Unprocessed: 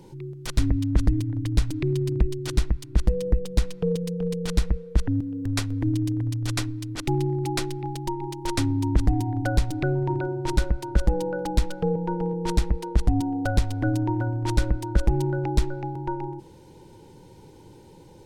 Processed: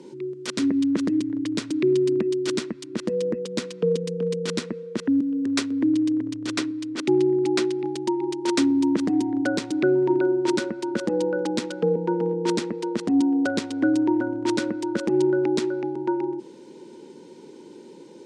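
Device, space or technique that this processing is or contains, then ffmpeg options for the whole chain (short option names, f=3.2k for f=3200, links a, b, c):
television speaker: -filter_complex "[0:a]highpass=f=210:w=0.5412,highpass=f=210:w=1.3066,equalizer=f=240:t=q:w=4:g=7,equalizer=f=380:t=q:w=4:g=6,equalizer=f=780:t=q:w=4:g=-9,lowpass=f=8.6k:w=0.5412,lowpass=f=8.6k:w=1.3066,asettb=1/sr,asplit=3[a][b][c];[a]atrim=end=5.694[d];[b]atrim=start=5.69:end=7.79,asetpts=PTS-STARTPTS,afade=t=in:d=0.004:c=qsin,afade=t=out:st=2.096:d=0.004:c=qsin,highshelf=f=5.5k:g=-5.5[e];[c]atrim=start=7.786[f];[d][e]acrossfade=d=0.004:c1=hsin:c2=qsin[g];[g][f]acrossfade=d=0.004:c1=qsin:c2=hsin,volume=3.5dB"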